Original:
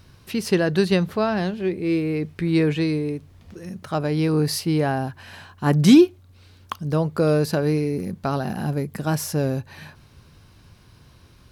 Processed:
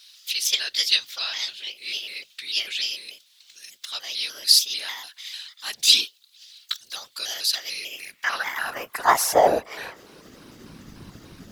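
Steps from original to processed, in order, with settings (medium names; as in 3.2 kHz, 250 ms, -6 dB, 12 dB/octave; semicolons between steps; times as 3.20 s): pitch shift switched off and on +3.5 st, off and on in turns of 148 ms; high-pass sweep 3.7 kHz -> 180 Hz, 7.65–10.85 s; whisper effect; trim +7 dB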